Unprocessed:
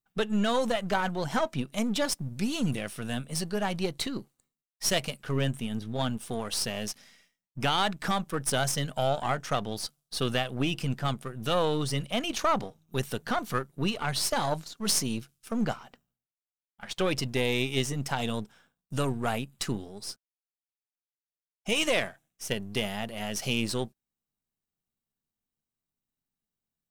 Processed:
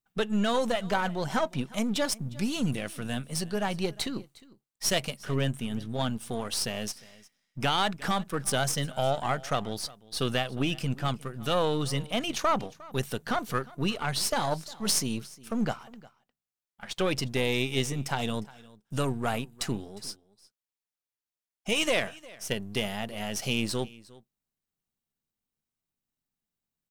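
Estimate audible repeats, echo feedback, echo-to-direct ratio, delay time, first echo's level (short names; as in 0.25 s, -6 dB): 1, no steady repeat, -21.5 dB, 0.356 s, -21.5 dB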